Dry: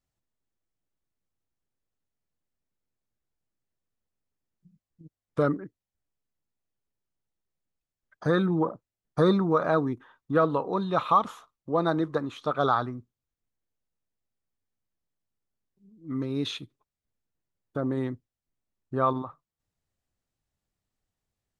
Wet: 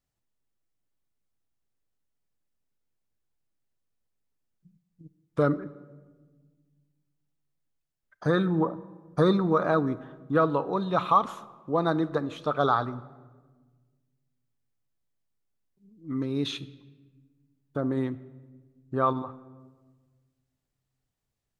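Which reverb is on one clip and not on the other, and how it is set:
rectangular room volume 1,200 cubic metres, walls mixed, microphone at 0.31 metres

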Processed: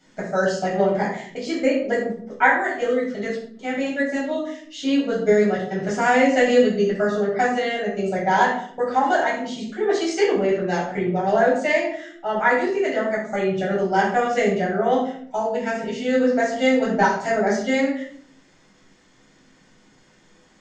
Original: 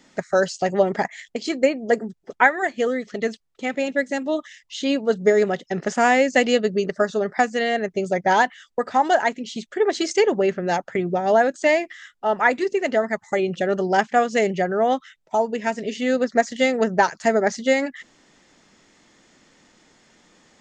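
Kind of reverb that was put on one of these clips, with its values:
rectangular room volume 780 cubic metres, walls furnished, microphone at 7.6 metres
level −10 dB

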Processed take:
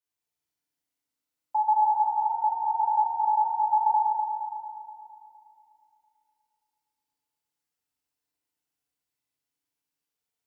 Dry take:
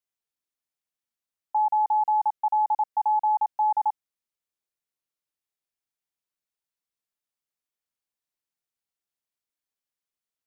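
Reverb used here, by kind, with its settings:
feedback delay network reverb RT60 2.7 s, low-frequency decay 1.4×, high-frequency decay 0.85×, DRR −8.5 dB
level −5.5 dB

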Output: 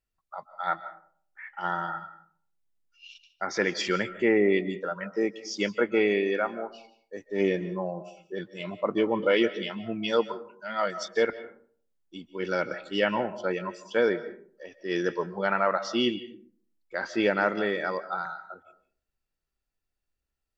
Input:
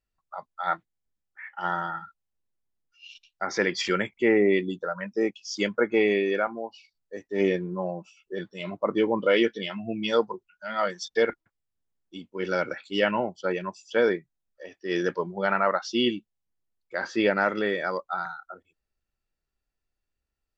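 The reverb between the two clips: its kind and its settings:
comb and all-pass reverb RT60 0.53 s, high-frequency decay 0.45×, pre-delay 110 ms, DRR 14 dB
level −1.5 dB

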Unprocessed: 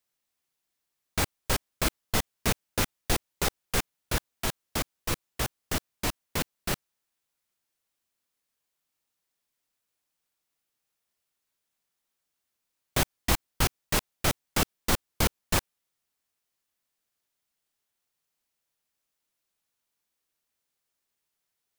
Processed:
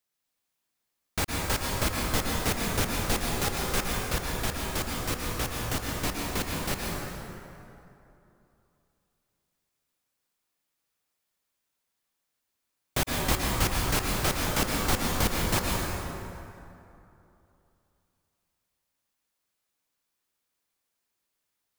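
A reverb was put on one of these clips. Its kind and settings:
dense smooth reverb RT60 2.9 s, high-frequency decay 0.55×, pre-delay 100 ms, DRR −2 dB
level −2 dB

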